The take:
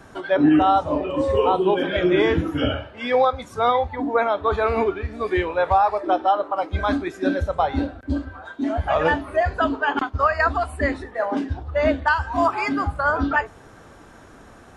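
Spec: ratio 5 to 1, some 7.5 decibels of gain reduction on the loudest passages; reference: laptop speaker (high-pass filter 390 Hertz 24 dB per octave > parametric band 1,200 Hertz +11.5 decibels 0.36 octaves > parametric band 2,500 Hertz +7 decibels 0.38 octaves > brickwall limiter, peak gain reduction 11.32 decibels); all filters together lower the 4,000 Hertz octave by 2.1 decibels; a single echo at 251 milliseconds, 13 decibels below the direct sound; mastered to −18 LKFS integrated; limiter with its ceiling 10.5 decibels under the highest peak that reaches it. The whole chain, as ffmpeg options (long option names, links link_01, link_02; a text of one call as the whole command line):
ffmpeg -i in.wav -af "equalizer=frequency=4000:width_type=o:gain=-6,acompressor=threshold=-21dB:ratio=5,alimiter=limit=-23dB:level=0:latency=1,highpass=frequency=390:width=0.5412,highpass=frequency=390:width=1.3066,equalizer=frequency=1200:width_type=o:width=0.36:gain=11.5,equalizer=frequency=2500:width_type=o:width=0.38:gain=7,aecho=1:1:251:0.224,volume=16dB,alimiter=limit=-9.5dB:level=0:latency=1" out.wav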